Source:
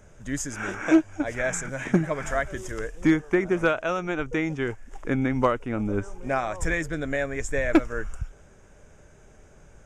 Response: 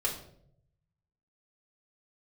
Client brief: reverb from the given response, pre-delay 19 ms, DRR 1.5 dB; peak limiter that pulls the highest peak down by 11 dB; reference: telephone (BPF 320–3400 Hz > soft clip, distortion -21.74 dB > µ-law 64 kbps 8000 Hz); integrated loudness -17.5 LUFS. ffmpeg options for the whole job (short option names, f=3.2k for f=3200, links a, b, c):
-filter_complex "[0:a]alimiter=limit=-21dB:level=0:latency=1,asplit=2[a][b];[1:a]atrim=start_sample=2205,adelay=19[c];[b][c]afir=irnorm=-1:irlink=0,volume=-7dB[d];[a][d]amix=inputs=2:normalize=0,highpass=320,lowpass=3.4k,asoftclip=threshold=-20dB,volume=14.5dB" -ar 8000 -c:a pcm_mulaw